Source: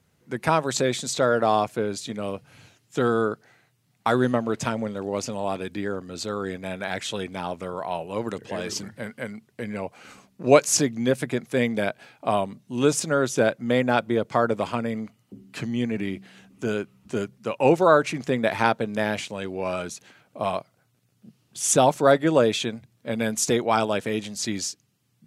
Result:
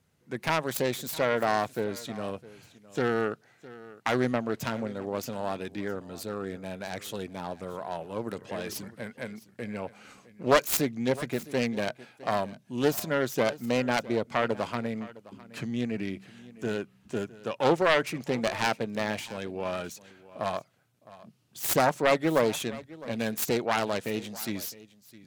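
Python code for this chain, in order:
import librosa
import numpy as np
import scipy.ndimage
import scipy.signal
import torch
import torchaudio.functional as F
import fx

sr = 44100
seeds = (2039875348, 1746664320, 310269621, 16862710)

y = fx.self_delay(x, sr, depth_ms=0.41)
y = fx.peak_eq(y, sr, hz=2400.0, db=-4.5, octaves=2.3, at=(6.13, 8.31))
y = y + 10.0 ** (-19.0 / 20.0) * np.pad(y, (int(660 * sr / 1000.0), 0))[:len(y)]
y = y * librosa.db_to_amplitude(-4.5)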